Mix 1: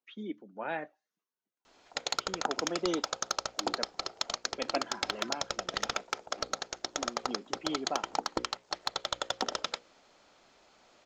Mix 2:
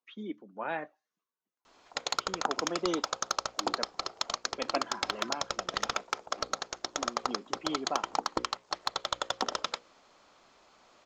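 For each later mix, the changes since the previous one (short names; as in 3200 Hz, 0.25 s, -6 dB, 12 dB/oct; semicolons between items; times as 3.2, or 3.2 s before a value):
master: add bell 1100 Hz +6 dB 0.4 oct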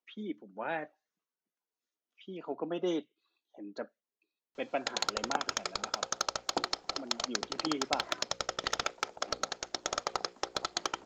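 background: entry +2.90 s; master: add bell 1100 Hz -6 dB 0.4 oct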